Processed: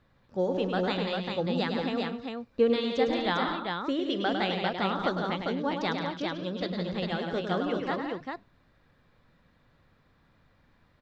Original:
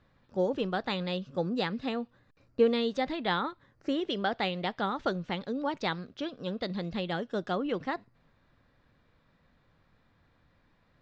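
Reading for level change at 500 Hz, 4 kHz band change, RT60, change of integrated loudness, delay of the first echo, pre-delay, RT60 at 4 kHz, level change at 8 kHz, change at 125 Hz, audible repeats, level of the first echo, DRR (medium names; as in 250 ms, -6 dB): +2.5 dB, +2.5 dB, no reverb, +2.5 dB, 104 ms, no reverb, no reverb, no reading, +2.5 dB, 5, -6.5 dB, no reverb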